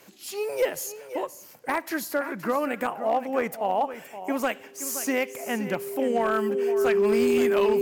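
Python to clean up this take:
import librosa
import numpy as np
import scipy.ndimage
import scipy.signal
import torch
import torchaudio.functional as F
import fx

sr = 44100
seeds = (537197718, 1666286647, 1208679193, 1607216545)

y = fx.fix_declip(x, sr, threshold_db=-16.0)
y = fx.notch(y, sr, hz=400.0, q=30.0)
y = fx.fix_echo_inverse(y, sr, delay_ms=521, level_db=-12.5)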